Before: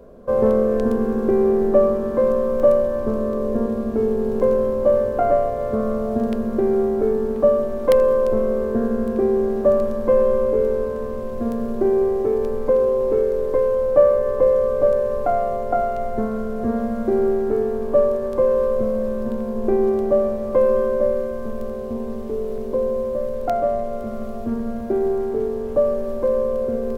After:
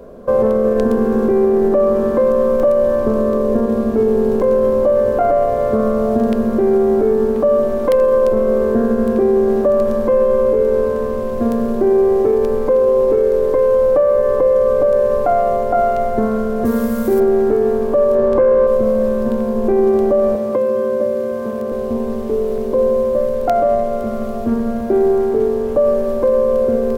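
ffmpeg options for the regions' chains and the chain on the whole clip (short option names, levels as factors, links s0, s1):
-filter_complex "[0:a]asettb=1/sr,asplit=3[s0][s1][s2];[s0]atrim=end=16.654[s3];[s1]atrim=start=16.65:end=17.2,asetpts=PTS-STARTPTS,afade=t=in:d=0.004:c=qsin,afade=t=out:st=0.546:d=0.004:c=qsin,aemphasis=mode=production:type=75fm,bandreject=f=690:w=14[s4];[s2]atrim=start=17.196[s5];[s3][s4]acrossfade=d=0.004:c1=hsin:c2=qsin[s6];[s6][s5]acrossfade=d=0.004:c1=qsin:c2=hsin,asettb=1/sr,asplit=3[s7][s8][s9];[s7]atrim=end=18.154[s10];[s8]atrim=start=18.15:end=18.67,asetpts=PTS-STARTPTS,afade=t=in:d=0.004:c=qsin,afade=t=out:st=0.516:d=0.004:c=qsin,lowpass=f=2100:p=1,acontrast=84[s11];[s9]atrim=start=18.666[s12];[s10][s11]acrossfade=d=0.004:c1=hsin:c2=qsin[s13];[s13][s12]acrossfade=d=0.004:c1=qsin:c2=hsin,asettb=1/sr,asplit=3[s14][s15][s16];[s14]atrim=end=20.354[s17];[s15]atrim=start=20.35:end=21.72,asetpts=PTS-STARTPTS,afade=t=in:d=0.004:c=qsin,afade=t=out:st=1.366:d=0.004:c=qsin,highpass=120,acrossover=split=390|2400[s18][s19][s20];[s18]acompressor=threshold=0.0447:ratio=4[s21];[s19]acompressor=threshold=0.0398:ratio=4[s22];[s20]acompressor=threshold=0.00158:ratio=4[s23];[s21][s22][s23]amix=inputs=3:normalize=0[s24];[s16]atrim=start=21.716[s25];[s17][s24]acrossfade=d=0.004:c1=hsin:c2=qsin[s26];[s26][s25]acrossfade=d=0.004:c1=qsin:c2=hsin,lowshelf=f=130:g=-4.5,alimiter=level_in=4.73:limit=0.891:release=50:level=0:latency=1,volume=0.531"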